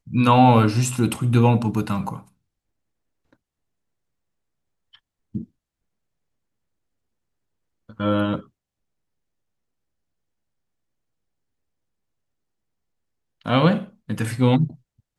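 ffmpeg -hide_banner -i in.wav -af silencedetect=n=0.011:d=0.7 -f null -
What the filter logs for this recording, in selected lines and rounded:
silence_start: 2.21
silence_end: 4.95 | silence_duration: 2.73
silence_start: 5.44
silence_end: 7.90 | silence_duration: 2.45
silence_start: 8.42
silence_end: 13.46 | silence_duration: 5.03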